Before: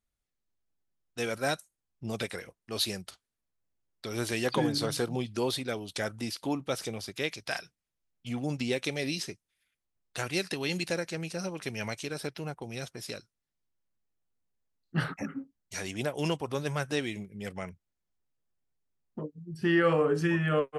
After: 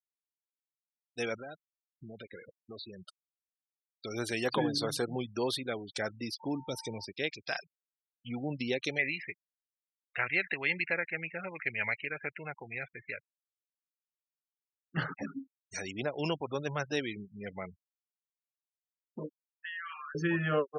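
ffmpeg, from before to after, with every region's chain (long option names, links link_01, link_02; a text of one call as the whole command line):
ffmpeg -i in.wav -filter_complex "[0:a]asettb=1/sr,asplit=3[link_01][link_02][link_03];[link_01]atrim=end=1.404[link_04];[link_02]atrim=start=1.4:end=3.07,asetpts=PTS-STARTPTS,afade=type=in:duration=0.004:curve=qsin,afade=type=out:start_time=1.666:duration=0.004:curve=qsin,highshelf=frequency=3300:gain=-5.5,acompressor=threshold=-38dB:ratio=8:attack=3.2:release=140:knee=1:detection=peak[link_05];[link_03]atrim=start=3.066[link_06];[link_04][link_05]acrossfade=duration=0.004:curve1=hsin:curve2=qsin[link_07];[link_07][link_06]acrossfade=duration=0.004:curve1=qsin:curve2=hsin,asettb=1/sr,asplit=3[link_08][link_09][link_10];[link_08]atrim=end=6.404[link_11];[link_09]atrim=start=6.4:end=7.05,asetpts=PTS-STARTPTS,afade=type=in:duration=0.004:curve=qsin,afade=type=out:start_time=0.646:duration=0.004:curve=qsin,lowshelf=frequency=82:gain=8.5,acrossover=split=470|3000[link_12][link_13][link_14];[link_13]acompressor=threshold=-40dB:ratio=10:attack=3.2:release=140:knee=2.83:detection=peak[link_15];[link_12][link_15][link_14]amix=inputs=3:normalize=0,aeval=exprs='val(0)+0.00355*sin(2*PI*900*n/s)':channel_layout=same[link_16];[link_10]atrim=start=7.046[link_17];[link_11][link_16]acrossfade=duration=0.004:curve1=hsin:curve2=qsin[link_18];[link_18][link_17]acrossfade=duration=0.004:curve1=qsin:curve2=hsin,asettb=1/sr,asplit=3[link_19][link_20][link_21];[link_19]atrim=end=8.984[link_22];[link_20]atrim=start=8.98:end=14.97,asetpts=PTS-STARTPTS,afade=type=in:duration=0.004:curve=qsin,afade=type=out:start_time=5.986:duration=0.004:curve=qsin,lowpass=frequency=2100:width_type=q:width=4,equalizer=frequency=260:width=0.72:gain=-7[link_23];[link_21]atrim=start=14.966[link_24];[link_22][link_23]acrossfade=duration=0.004:curve1=hsin:curve2=qsin[link_25];[link_25][link_24]acrossfade=duration=0.004:curve1=qsin:curve2=hsin,asettb=1/sr,asplit=3[link_26][link_27][link_28];[link_26]atrim=end=19.294[link_29];[link_27]atrim=start=19.29:end=20.15,asetpts=PTS-STARTPTS,afade=type=in:duration=0.004:curve=qsin,afade=type=out:start_time=0.856:duration=0.004:curve=qsin,highpass=frequency=1300:width=0.5412,highpass=frequency=1300:width=1.3066,acompressor=threshold=-35dB:ratio=12:attack=3.2:release=140:knee=1:detection=peak[link_30];[link_28]atrim=start=20.146[link_31];[link_29][link_30]acrossfade=duration=0.004:curve1=hsin:curve2=qsin[link_32];[link_32][link_31]acrossfade=duration=0.004:curve1=qsin:curve2=hsin,afftfilt=real='re*gte(hypot(re,im),0.0141)':imag='im*gte(hypot(re,im),0.0141)':win_size=1024:overlap=0.75,lowshelf=frequency=180:gain=-6.5,volume=-1dB" out.wav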